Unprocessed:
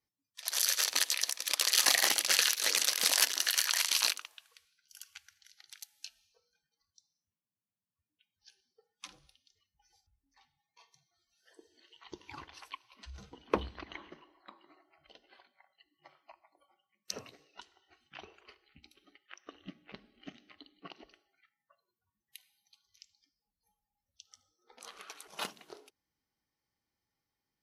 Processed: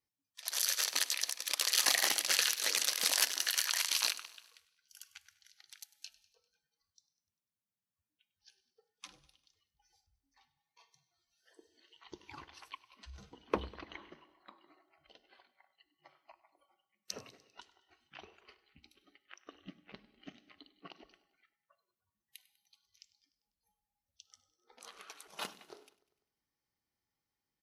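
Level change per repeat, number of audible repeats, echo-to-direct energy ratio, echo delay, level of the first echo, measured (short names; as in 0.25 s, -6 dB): -4.5 dB, 4, -18.0 dB, 99 ms, -20.0 dB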